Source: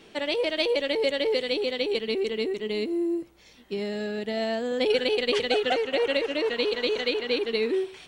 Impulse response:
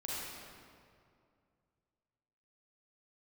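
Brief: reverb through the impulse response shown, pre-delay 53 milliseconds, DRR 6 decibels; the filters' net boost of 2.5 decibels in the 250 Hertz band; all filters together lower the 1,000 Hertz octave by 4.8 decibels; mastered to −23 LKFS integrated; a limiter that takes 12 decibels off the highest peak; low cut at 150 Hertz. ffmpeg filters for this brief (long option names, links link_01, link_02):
-filter_complex "[0:a]highpass=150,equalizer=frequency=250:width_type=o:gain=4.5,equalizer=frequency=1000:width_type=o:gain=-8,alimiter=limit=-23dB:level=0:latency=1,asplit=2[link_01][link_02];[1:a]atrim=start_sample=2205,adelay=53[link_03];[link_02][link_03]afir=irnorm=-1:irlink=0,volume=-8.5dB[link_04];[link_01][link_04]amix=inputs=2:normalize=0,volume=6.5dB"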